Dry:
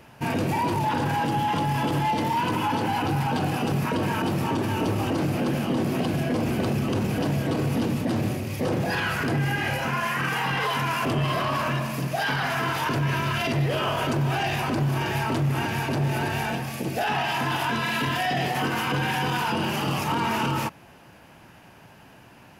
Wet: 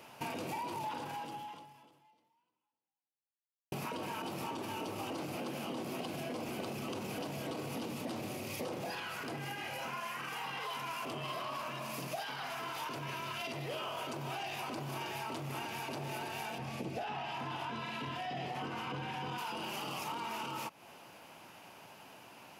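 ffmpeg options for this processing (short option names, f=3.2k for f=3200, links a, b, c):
-filter_complex "[0:a]asettb=1/sr,asplit=3[a][b][c];[a]atrim=end=16.584[d];[b]atrim=start=16.58:end=19.38,asetpts=PTS-STARTPTS,afade=t=in:d=0.004:c=qsin,afade=t=out:st=2.796:d=0.004:c=qsin,aemphasis=mode=reproduction:type=bsi[e];[c]atrim=start=19.376[f];[d][e]acrossfade=d=0.004:c1=hsin:c2=qsin[g];[g][f]acrossfade=d=0.004:c1=qsin:c2=hsin,asplit=2[h][i];[h]atrim=end=3.72,asetpts=PTS-STARTPTS,afade=t=out:st=0.96:d=2.76:c=exp[j];[i]atrim=start=3.72,asetpts=PTS-STARTPTS,afade=t=in:d=0.004:c=hsin[k];[j][k]concat=n=2:v=0:a=1,highpass=f=580:p=1,acompressor=threshold=-37dB:ratio=6,equalizer=f=1.7k:w=3.4:g=-8"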